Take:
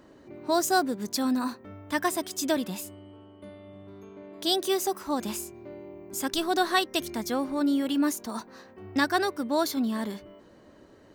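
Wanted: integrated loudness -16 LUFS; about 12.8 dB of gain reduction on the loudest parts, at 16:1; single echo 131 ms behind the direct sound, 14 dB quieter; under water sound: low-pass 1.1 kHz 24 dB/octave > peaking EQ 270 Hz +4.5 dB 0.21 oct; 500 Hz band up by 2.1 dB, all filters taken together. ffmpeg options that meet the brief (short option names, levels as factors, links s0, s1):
-af "equalizer=f=500:t=o:g=3,acompressor=threshold=0.0282:ratio=16,lowpass=f=1100:w=0.5412,lowpass=f=1100:w=1.3066,equalizer=f=270:t=o:w=0.21:g=4.5,aecho=1:1:131:0.2,volume=11.2"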